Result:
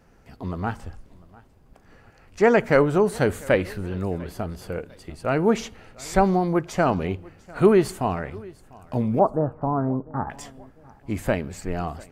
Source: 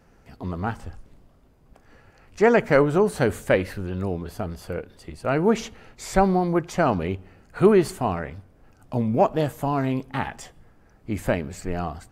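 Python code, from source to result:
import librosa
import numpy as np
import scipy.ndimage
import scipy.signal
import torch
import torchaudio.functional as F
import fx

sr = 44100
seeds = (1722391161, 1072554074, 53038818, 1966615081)

p1 = fx.steep_lowpass(x, sr, hz=1400.0, slope=48, at=(9.19, 10.3))
y = p1 + fx.echo_feedback(p1, sr, ms=698, feedback_pct=37, wet_db=-23, dry=0)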